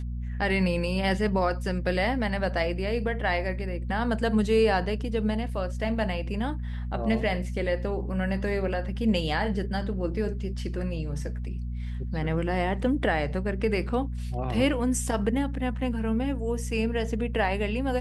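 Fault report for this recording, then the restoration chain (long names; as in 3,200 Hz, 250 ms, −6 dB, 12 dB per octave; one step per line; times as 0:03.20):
mains hum 60 Hz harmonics 4 −32 dBFS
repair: hum removal 60 Hz, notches 4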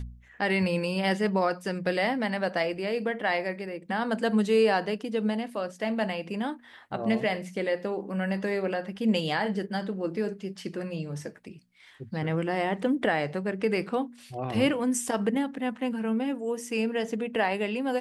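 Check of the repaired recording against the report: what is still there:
none of them is left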